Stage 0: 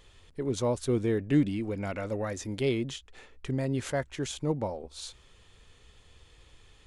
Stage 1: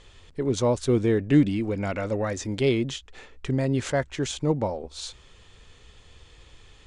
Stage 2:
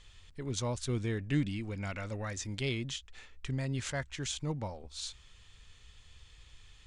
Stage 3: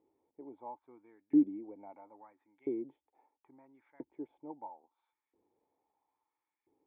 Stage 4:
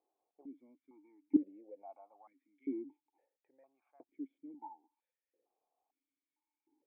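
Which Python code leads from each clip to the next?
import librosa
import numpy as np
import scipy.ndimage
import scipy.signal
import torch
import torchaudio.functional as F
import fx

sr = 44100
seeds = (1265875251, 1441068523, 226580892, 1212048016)

y1 = scipy.signal.sosfilt(scipy.signal.butter(4, 8600.0, 'lowpass', fs=sr, output='sos'), x)
y1 = y1 * librosa.db_to_amplitude(5.5)
y2 = fx.peak_eq(y1, sr, hz=430.0, db=-12.5, octaves=2.5)
y2 = y2 * librosa.db_to_amplitude(-3.5)
y3 = fx.filter_lfo_highpass(y2, sr, shape='saw_up', hz=0.75, low_hz=360.0, high_hz=1900.0, q=2.1)
y3 = fx.formant_cascade(y3, sr, vowel='u')
y3 = y3 * librosa.db_to_amplitude(7.0)
y4 = fx.vowel_held(y3, sr, hz=2.2)
y4 = y4 * librosa.db_to_amplitude(4.5)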